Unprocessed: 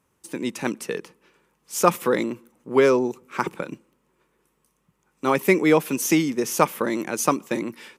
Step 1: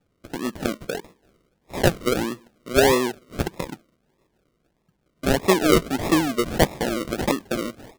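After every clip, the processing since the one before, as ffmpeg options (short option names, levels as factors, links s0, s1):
-af "acrusher=samples=41:mix=1:aa=0.000001:lfo=1:lforange=24.6:lforate=1.6"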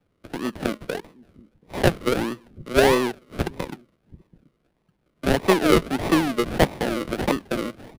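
-filter_complex "[0:a]acrossover=split=290|5300[s0][s1][s2];[s0]aecho=1:1:732:0.126[s3];[s2]aeval=exprs='abs(val(0))':c=same[s4];[s3][s1][s4]amix=inputs=3:normalize=0"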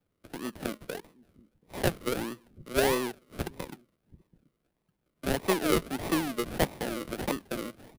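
-af "highshelf=f=7600:g=11,volume=0.355"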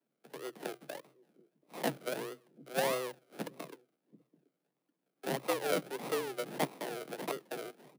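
-af "afreqshift=130,volume=0.473"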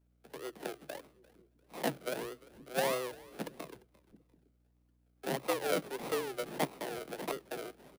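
-filter_complex "[0:a]asplit=3[s0][s1][s2];[s1]adelay=347,afreqshift=-87,volume=0.0794[s3];[s2]adelay=694,afreqshift=-174,volume=0.0263[s4];[s0][s3][s4]amix=inputs=3:normalize=0,aeval=exprs='val(0)+0.000316*(sin(2*PI*60*n/s)+sin(2*PI*2*60*n/s)/2+sin(2*PI*3*60*n/s)/3+sin(2*PI*4*60*n/s)/4+sin(2*PI*5*60*n/s)/5)':c=same"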